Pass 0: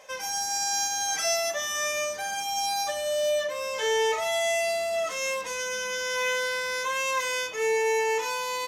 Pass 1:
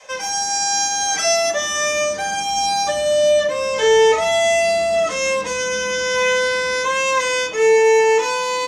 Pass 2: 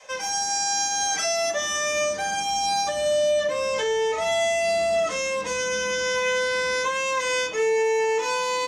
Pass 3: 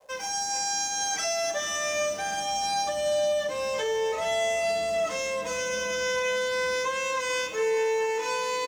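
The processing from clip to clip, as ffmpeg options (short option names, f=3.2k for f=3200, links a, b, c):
-filter_complex "[0:a]lowpass=f=9.2k:w=0.5412,lowpass=f=9.2k:w=1.3066,adynamicequalizer=threshold=0.00794:dfrequency=270:dqfactor=0.71:tfrequency=270:tqfactor=0.71:attack=5:release=100:ratio=0.375:range=3.5:mode=boostabove:tftype=bell,acrossover=split=200|1400|3800[a][b][c][d];[a]dynaudnorm=f=200:g=21:m=8dB[e];[e][b][c][d]amix=inputs=4:normalize=0,volume=8dB"
-af "alimiter=limit=-12dB:level=0:latency=1:release=148,volume=-4dB"
-filter_complex "[0:a]acrossover=split=900[a][b];[b]aeval=exprs='sgn(val(0))*max(abs(val(0))-0.00398,0)':c=same[c];[a][c]amix=inputs=2:normalize=0,aecho=1:1:436|872|1308|1744|2180:0.211|0.101|0.0487|0.0234|0.0112,volume=-3.5dB"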